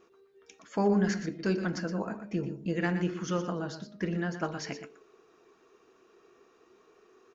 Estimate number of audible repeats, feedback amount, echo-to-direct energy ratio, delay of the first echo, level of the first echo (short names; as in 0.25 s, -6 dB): 1, no steady repeat, -10.0 dB, 0.12 s, -10.0 dB